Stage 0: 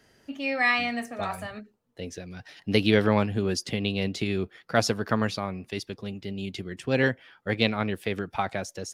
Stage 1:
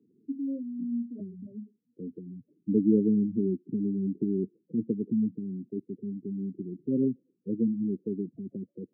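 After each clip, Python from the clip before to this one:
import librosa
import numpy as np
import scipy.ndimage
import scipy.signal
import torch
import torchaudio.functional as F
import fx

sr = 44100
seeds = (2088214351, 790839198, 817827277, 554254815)

y = scipy.signal.sosfilt(scipy.signal.cheby2(4, 60, 1200.0, 'lowpass', fs=sr, output='sos'), x)
y = fx.spec_gate(y, sr, threshold_db=-15, keep='strong')
y = scipy.signal.sosfilt(scipy.signal.butter(4, 180.0, 'highpass', fs=sr, output='sos'), y)
y = y * 10.0 ** (3.5 / 20.0)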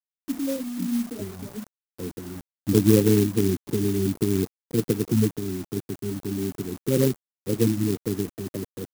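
y = fx.spec_clip(x, sr, under_db=25)
y = fx.quant_dither(y, sr, seeds[0], bits=8, dither='none')
y = fx.clock_jitter(y, sr, seeds[1], jitter_ms=0.1)
y = y * 10.0 ** (6.5 / 20.0)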